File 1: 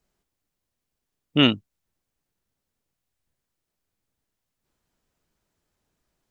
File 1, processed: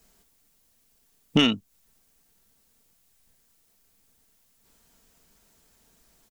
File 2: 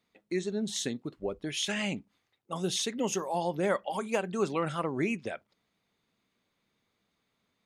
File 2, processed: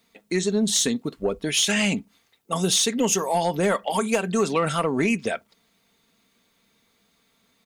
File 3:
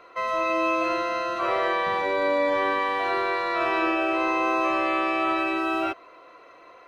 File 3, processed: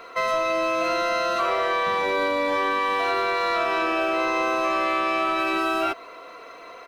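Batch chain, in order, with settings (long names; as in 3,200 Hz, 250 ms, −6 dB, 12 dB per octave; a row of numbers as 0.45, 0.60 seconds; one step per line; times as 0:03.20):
high-shelf EQ 5,000 Hz +9.5 dB
comb filter 4.4 ms, depth 37%
downward compressor 16 to 1, threshold −25 dBFS
soft clipping −20.5 dBFS
loudness normalisation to −23 LKFS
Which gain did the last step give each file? +10.5, +9.5, +6.5 decibels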